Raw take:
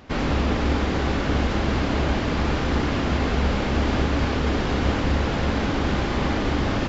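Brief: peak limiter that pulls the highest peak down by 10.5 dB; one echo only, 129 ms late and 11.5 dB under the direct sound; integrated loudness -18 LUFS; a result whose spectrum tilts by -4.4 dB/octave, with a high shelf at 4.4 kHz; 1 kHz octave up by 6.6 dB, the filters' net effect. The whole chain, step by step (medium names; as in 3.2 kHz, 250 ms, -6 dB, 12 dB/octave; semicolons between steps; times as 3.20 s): peaking EQ 1 kHz +8 dB; treble shelf 4.4 kHz +5.5 dB; peak limiter -17 dBFS; delay 129 ms -11.5 dB; trim +7.5 dB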